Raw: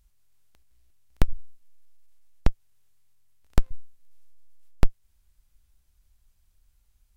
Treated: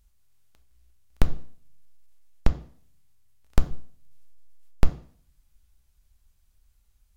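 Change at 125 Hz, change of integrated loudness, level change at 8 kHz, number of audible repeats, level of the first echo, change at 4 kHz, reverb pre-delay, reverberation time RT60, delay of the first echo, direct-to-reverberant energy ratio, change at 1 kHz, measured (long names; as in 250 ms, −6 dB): +1.0 dB, +0.5 dB, can't be measured, no echo audible, no echo audible, +0.5 dB, 3 ms, 0.50 s, no echo audible, 9.0 dB, +0.5 dB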